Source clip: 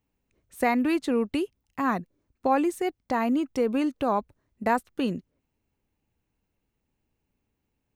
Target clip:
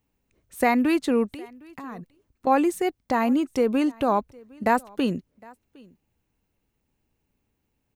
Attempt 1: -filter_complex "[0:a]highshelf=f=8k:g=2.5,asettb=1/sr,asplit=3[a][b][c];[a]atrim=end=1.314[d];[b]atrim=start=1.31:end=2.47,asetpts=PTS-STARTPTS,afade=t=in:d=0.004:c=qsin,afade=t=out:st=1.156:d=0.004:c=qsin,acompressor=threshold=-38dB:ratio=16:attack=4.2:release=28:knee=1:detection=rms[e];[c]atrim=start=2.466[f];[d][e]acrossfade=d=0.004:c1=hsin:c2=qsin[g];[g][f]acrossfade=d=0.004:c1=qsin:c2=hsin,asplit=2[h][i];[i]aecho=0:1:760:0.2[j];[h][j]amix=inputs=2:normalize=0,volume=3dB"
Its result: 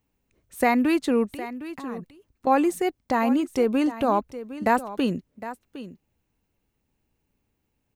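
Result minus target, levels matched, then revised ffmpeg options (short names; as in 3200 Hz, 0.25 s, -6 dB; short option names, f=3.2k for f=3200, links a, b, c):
echo-to-direct +11.5 dB
-filter_complex "[0:a]highshelf=f=8k:g=2.5,asettb=1/sr,asplit=3[a][b][c];[a]atrim=end=1.314[d];[b]atrim=start=1.31:end=2.47,asetpts=PTS-STARTPTS,afade=t=in:d=0.004:c=qsin,afade=t=out:st=1.156:d=0.004:c=qsin,acompressor=threshold=-38dB:ratio=16:attack=4.2:release=28:knee=1:detection=rms[e];[c]atrim=start=2.466[f];[d][e]acrossfade=d=0.004:c1=hsin:c2=qsin[g];[g][f]acrossfade=d=0.004:c1=qsin:c2=hsin,asplit=2[h][i];[i]aecho=0:1:760:0.0531[j];[h][j]amix=inputs=2:normalize=0,volume=3dB"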